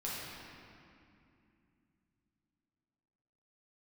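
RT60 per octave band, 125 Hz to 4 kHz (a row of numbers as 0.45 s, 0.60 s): 4.0 s, 4.0 s, 2.7 s, 2.5 s, 2.4 s, 1.8 s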